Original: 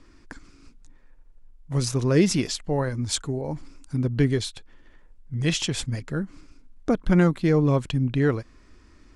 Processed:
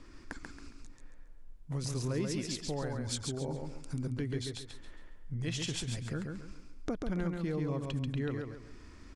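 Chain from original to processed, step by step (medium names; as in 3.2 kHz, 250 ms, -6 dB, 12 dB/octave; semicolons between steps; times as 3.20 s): compression 3:1, threshold -38 dBFS, peak gain reduction 17.5 dB; feedback delay 137 ms, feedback 32%, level -4 dB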